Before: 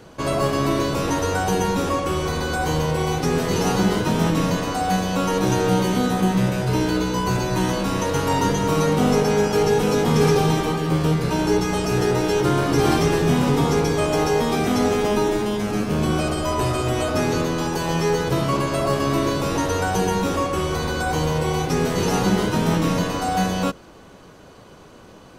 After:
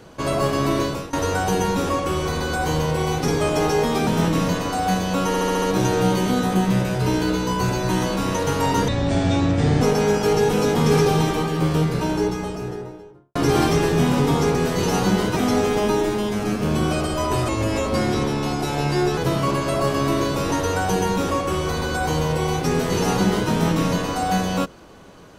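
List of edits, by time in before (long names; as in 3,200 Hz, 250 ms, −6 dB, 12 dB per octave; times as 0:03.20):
0:00.83–0:01.13: fade out, to −22 dB
0:03.28–0:04.09: swap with 0:13.85–0:14.64
0:05.29: stutter 0.07 s, 6 plays
0:08.55–0:09.11: play speed 60%
0:11.02–0:12.65: fade out and dull
0:16.76–0:18.23: play speed 87%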